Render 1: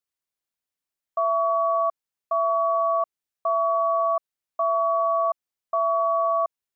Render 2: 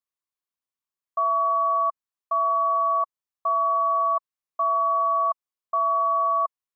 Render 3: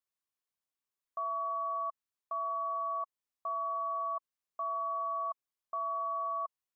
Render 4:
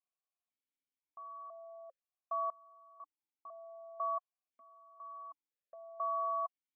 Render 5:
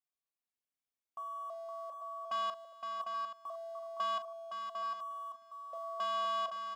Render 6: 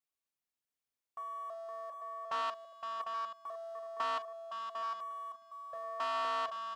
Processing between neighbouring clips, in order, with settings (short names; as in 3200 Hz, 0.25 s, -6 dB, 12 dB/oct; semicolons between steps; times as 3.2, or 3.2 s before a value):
bell 1100 Hz +9.5 dB 0.35 oct; gain -6.5 dB
limiter -27.5 dBFS, peak gain reduction 11 dB; gain -2 dB
vowel sequencer 2 Hz; gain +5.5 dB
sample leveller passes 2; tapped delay 41/515/751/827 ms -11.5/-6.5/-6.5/-12 dB; gain -1 dB
Doppler distortion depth 0.18 ms